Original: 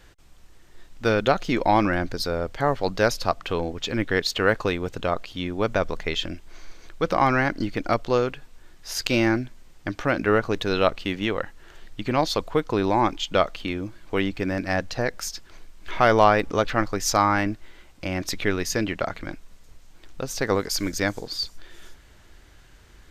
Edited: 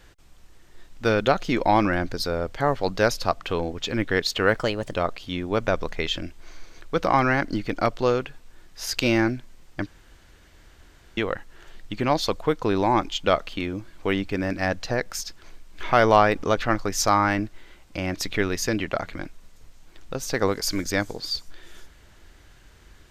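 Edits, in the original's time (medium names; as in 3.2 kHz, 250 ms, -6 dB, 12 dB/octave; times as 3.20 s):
4.57–5.03 s: speed 120%
9.94–11.25 s: room tone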